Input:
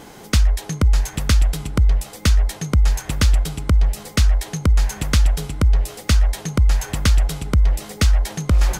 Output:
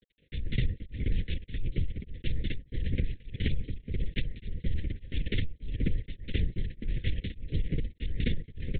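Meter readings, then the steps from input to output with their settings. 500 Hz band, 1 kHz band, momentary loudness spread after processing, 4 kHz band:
−12.5 dB, below −35 dB, 5 LU, −15.0 dB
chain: on a send: loudspeakers that aren't time-aligned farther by 66 metres −3 dB, 87 metres −2 dB
on the sum: transient designer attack +2 dB, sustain −12 dB
reverb reduction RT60 0.57 s
centre clipping without the shift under −31 dBFS
linear-prediction vocoder at 8 kHz whisper
elliptic band-stop filter 500–1,900 Hz, stop band 50 dB
downward compressor, threshold −17 dBFS, peak gain reduction 11 dB
tremolo along a rectified sine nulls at 1.7 Hz
level −5.5 dB

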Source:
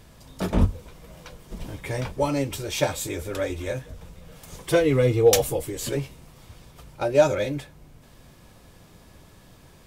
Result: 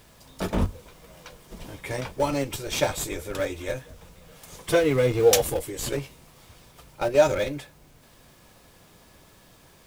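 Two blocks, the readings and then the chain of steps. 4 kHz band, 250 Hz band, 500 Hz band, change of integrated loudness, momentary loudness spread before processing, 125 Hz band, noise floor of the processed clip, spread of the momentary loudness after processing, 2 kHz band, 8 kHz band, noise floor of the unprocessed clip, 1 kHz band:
+0.5 dB, −2.5 dB, −1.0 dB, −1.0 dB, 20 LU, −4.5 dB, −55 dBFS, 17 LU, +0.5 dB, +0.5 dB, −52 dBFS, 0.0 dB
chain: low-shelf EQ 260 Hz −7.5 dB
in parallel at −7.5 dB: comparator with hysteresis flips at −24 dBFS
on the sum: bit reduction 10 bits

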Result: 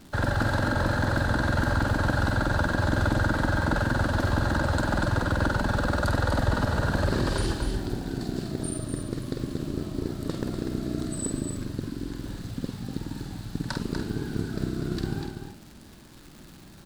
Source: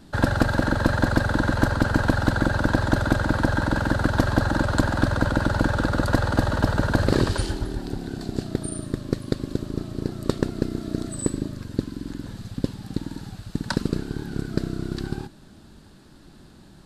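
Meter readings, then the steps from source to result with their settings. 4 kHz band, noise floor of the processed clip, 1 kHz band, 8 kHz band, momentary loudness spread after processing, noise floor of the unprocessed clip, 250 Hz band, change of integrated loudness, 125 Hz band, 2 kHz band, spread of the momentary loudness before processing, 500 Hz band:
−2.0 dB, −48 dBFS, −2.0 dB, −1.0 dB, 10 LU, −49 dBFS, −4.5 dB, −3.0 dB, −2.5 dB, −2.0 dB, 10 LU, −3.5 dB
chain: brickwall limiter −15 dBFS, peak gain reduction 8 dB
surface crackle 260 per second −38 dBFS
double-tracking delay 48 ms −6.5 dB
single-tap delay 244 ms −6.5 dB
level −2 dB

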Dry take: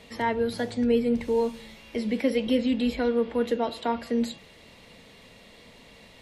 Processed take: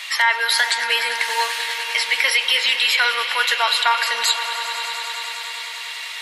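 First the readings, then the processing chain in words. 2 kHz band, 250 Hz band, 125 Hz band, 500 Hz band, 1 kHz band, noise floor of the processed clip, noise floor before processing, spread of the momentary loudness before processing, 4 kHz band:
+21.5 dB, below −30 dB, below −35 dB, −8.0 dB, +12.0 dB, −31 dBFS, −52 dBFS, 8 LU, +22.0 dB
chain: high-pass filter 1,200 Hz 24 dB per octave
echo that builds up and dies away 99 ms, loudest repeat 5, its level −17 dB
boost into a limiter +28 dB
level −5.5 dB

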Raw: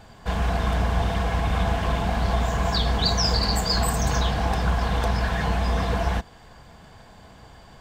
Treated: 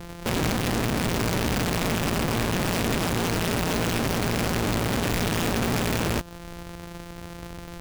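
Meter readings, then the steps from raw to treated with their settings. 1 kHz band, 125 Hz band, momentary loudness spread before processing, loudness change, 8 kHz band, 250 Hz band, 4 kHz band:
−3.0 dB, −2.5 dB, 4 LU, −1.0 dB, +3.0 dB, +4.0 dB, −3.0 dB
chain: samples sorted by size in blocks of 256 samples
downward compressor 16 to 1, threshold −27 dBFS, peak gain reduction 11 dB
dynamic equaliser 2,100 Hz, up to −8 dB, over −59 dBFS, Q 5.6
wrap-around overflow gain 28.5 dB
level +8.5 dB

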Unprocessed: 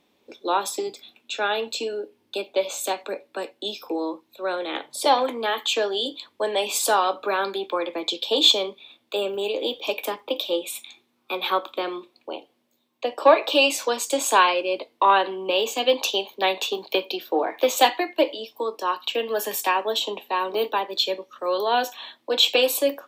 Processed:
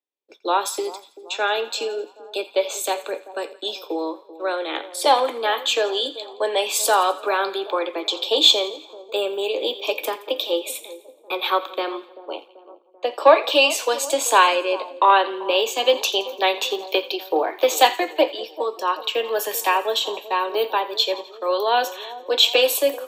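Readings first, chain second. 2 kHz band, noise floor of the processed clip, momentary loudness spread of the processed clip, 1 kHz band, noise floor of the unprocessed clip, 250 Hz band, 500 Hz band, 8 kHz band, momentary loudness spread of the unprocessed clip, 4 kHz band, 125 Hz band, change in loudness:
+2.5 dB, −50 dBFS, 14 LU, +2.5 dB, −68 dBFS, −0.5 dB, +2.5 dB, +2.5 dB, 14 LU, +2.5 dB, can't be measured, +2.5 dB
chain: high-pass filter 320 Hz 24 dB per octave
downward expander −37 dBFS
echo with a time of its own for lows and highs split 1,000 Hz, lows 387 ms, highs 85 ms, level −16 dB
level +2.5 dB

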